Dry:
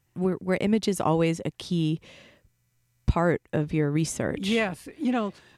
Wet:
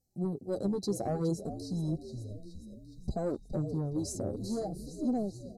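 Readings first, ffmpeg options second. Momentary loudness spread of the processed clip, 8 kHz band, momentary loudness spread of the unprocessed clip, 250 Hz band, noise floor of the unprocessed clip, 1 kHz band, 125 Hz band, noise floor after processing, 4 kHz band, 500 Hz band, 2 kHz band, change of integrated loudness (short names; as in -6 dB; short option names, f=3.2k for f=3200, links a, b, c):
11 LU, -7.0 dB, 6 LU, -7.5 dB, -71 dBFS, -12.0 dB, -7.0 dB, -53 dBFS, -13.5 dB, -8.0 dB, under -25 dB, -8.5 dB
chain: -filter_complex "[0:a]afftfilt=real='re*(1-between(b*sr/4096,820,3900))':imag='im*(1-between(b*sr/4096,820,3900))':win_size=4096:overlap=0.75,deesser=0.4,asplit=8[a][b][c][d][e][f][g][h];[b]adelay=417,afreqshift=-52,volume=-12dB[i];[c]adelay=834,afreqshift=-104,volume=-16dB[j];[d]adelay=1251,afreqshift=-156,volume=-20dB[k];[e]adelay=1668,afreqshift=-208,volume=-24dB[l];[f]adelay=2085,afreqshift=-260,volume=-28.1dB[m];[g]adelay=2502,afreqshift=-312,volume=-32.1dB[n];[h]adelay=2919,afreqshift=-364,volume=-36.1dB[o];[a][i][j][k][l][m][n][o]amix=inputs=8:normalize=0,asoftclip=type=tanh:threshold=-16.5dB,flanger=delay=3:depth=8.2:regen=3:speed=0.59:shape=triangular,volume=-3.5dB"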